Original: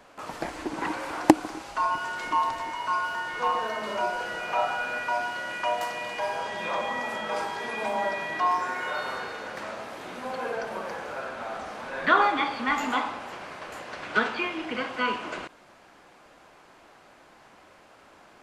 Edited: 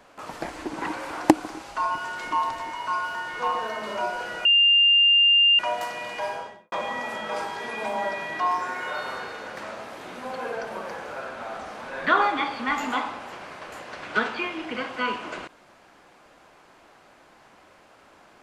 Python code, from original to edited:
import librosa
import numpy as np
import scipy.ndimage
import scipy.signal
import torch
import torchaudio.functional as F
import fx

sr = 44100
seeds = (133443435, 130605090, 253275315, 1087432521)

y = fx.studio_fade_out(x, sr, start_s=6.26, length_s=0.46)
y = fx.edit(y, sr, fx.bleep(start_s=4.45, length_s=1.14, hz=2800.0, db=-14.0), tone=tone)